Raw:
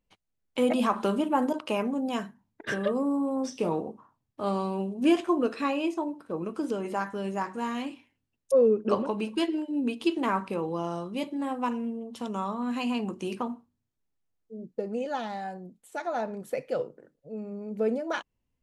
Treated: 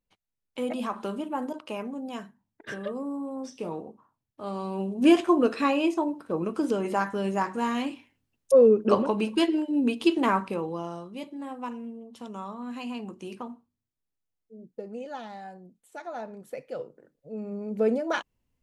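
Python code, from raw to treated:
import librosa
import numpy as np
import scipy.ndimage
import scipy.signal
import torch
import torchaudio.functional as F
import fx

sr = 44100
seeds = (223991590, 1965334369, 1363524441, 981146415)

y = fx.gain(x, sr, db=fx.line((4.49, -6.0), (5.0, 4.0), (10.26, 4.0), (11.1, -6.0), (16.74, -6.0), (17.54, 3.0)))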